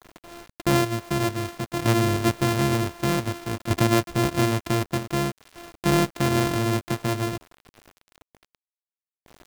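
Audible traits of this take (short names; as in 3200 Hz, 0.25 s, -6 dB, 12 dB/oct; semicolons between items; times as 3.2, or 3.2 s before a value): a buzz of ramps at a fixed pitch in blocks of 128 samples; tremolo saw down 0.54 Hz, depth 60%; a quantiser's noise floor 8-bit, dither none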